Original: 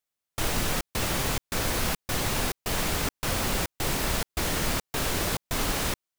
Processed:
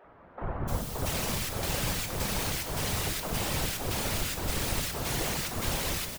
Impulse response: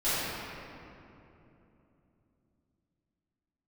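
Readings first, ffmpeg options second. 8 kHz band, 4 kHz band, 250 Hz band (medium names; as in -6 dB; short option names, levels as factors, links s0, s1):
-2.5 dB, -3.0 dB, -3.5 dB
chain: -filter_complex "[0:a]aeval=exprs='val(0)+0.5*0.0355*sgn(val(0))':c=same,acrossover=split=290|1400[s0][s1][s2];[s0]adelay=40[s3];[s2]adelay=680[s4];[s3][s1][s4]amix=inputs=3:normalize=0,asplit=2[s5][s6];[1:a]atrim=start_sample=2205[s7];[s6][s7]afir=irnorm=-1:irlink=0,volume=0.0841[s8];[s5][s8]amix=inputs=2:normalize=0,afftfilt=real='hypot(re,im)*cos(2*PI*random(0))':imag='hypot(re,im)*sin(2*PI*random(1))':win_size=512:overlap=0.75,asplit=2[s9][s10];[s10]asplit=7[s11][s12][s13][s14][s15][s16][s17];[s11]adelay=182,afreqshift=-92,volume=0.237[s18];[s12]adelay=364,afreqshift=-184,volume=0.143[s19];[s13]adelay=546,afreqshift=-276,volume=0.0851[s20];[s14]adelay=728,afreqshift=-368,volume=0.0513[s21];[s15]adelay=910,afreqshift=-460,volume=0.0309[s22];[s16]adelay=1092,afreqshift=-552,volume=0.0184[s23];[s17]adelay=1274,afreqshift=-644,volume=0.0111[s24];[s18][s19][s20][s21][s22][s23][s24]amix=inputs=7:normalize=0[s25];[s9][s25]amix=inputs=2:normalize=0"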